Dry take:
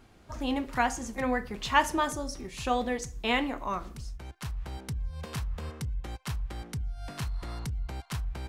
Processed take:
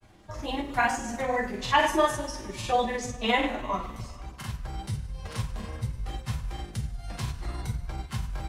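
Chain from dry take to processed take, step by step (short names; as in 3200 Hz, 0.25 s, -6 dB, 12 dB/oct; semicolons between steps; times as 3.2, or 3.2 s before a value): bin magnitudes rounded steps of 15 dB; two-slope reverb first 0.34 s, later 2.1 s, from -18 dB, DRR -4.5 dB; grains, spray 25 ms, pitch spread up and down by 0 st; gain -1.5 dB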